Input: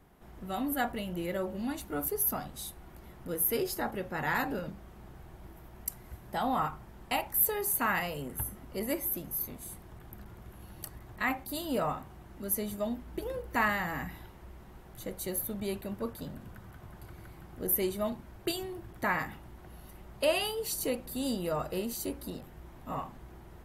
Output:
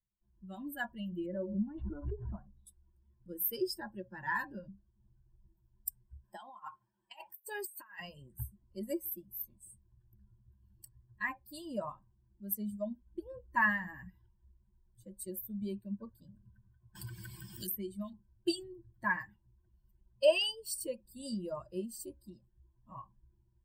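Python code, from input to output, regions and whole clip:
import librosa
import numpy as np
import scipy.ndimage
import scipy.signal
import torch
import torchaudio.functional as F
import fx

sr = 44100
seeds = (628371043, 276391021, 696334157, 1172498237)

y = fx.chain(x, sr, fx.gaussian_blur(sigma=3.7),
    fx.pre_swell(db_per_s=21.0), at=(1.26, 2.67))
y = fx.chain(y, sr, fx.highpass(hz=460.0, slope=6),
    fx.over_compress(threshold_db=-35.0, ratio=-0.5), at=(6.24, 7.99))
y = fx.chain(y, sr, fx.peak_eq(hz=490.0, db=-6.0, octaves=1.5),
    fx.band_squash(depth_pct=100), at=(16.95, 18.13))
y = fx.bin_expand(y, sr, power=2.0)
y = fx.ripple_eq(y, sr, per_octave=1.3, db=17)
y = y * librosa.db_to_amplitude(-2.5)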